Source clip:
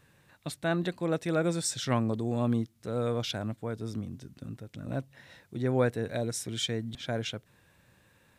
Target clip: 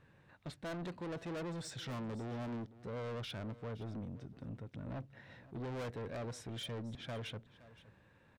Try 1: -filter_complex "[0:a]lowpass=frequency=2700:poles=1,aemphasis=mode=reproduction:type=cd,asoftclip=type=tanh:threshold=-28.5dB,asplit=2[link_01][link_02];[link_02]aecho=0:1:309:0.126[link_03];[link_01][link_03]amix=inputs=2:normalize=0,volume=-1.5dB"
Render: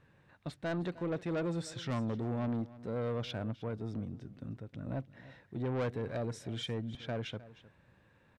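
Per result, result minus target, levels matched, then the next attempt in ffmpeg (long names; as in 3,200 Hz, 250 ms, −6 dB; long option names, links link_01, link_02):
echo 209 ms early; soft clipping: distortion −6 dB
-filter_complex "[0:a]lowpass=frequency=2700:poles=1,aemphasis=mode=reproduction:type=cd,asoftclip=type=tanh:threshold=-28.5dB,asplit=2[link_01][link_02];[link_02]aecho=0:1:518:0.126[link_03];[link_01][link_03]amix=inputs=2:normalize=0,volume=-1.5dB"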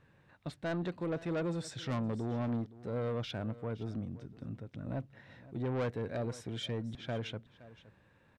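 soft clipping: distortion −6 dB
-filter_complex "[0:a]lowpass=frequency=2700:poles=1,aemphasis=mode=reproduction:type=cd,asoftclip=type=tanh:threshold=-38dB,asplit=2[link_01][link_02];[link_02]aecho=0:1:518:0.126[link_03];[link_01][link_03]amix=inputs=2:normalize=0,volume=-1.5dB"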